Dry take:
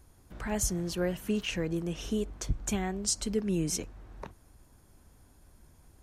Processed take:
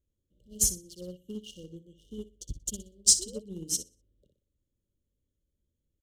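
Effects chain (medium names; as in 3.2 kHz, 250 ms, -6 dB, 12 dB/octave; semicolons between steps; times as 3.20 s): local Wiener filter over 9 samples; treble shelf 2.2 kHz +11.5 dB; on a send: feedback delay 61 ms, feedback 38%, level -6.5 dB; on the sum: painted sound rise, 3.19–3.62 s, 340–1200 Hz -33 dBFS; brick-wall FIR band-stop 610–2800 Hz; in parallel at -11 dB: hard clipper -22.5 dBFS, distortion -8 dB; on the sum: upward expansion 2.5:1, over -33 dBFS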